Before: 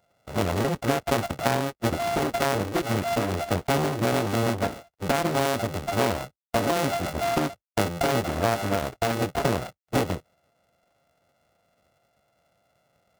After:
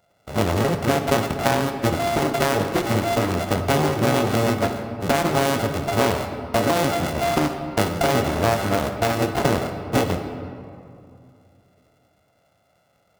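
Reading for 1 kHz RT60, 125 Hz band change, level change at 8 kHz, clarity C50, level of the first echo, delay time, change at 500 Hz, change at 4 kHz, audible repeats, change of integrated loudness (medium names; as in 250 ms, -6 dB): 2.4 s, +4.5 dB, +4.0 dB, 7.5 dB, no echo, no echo, +4.5 dB, +4.5 dB, no echo, +4.5 dB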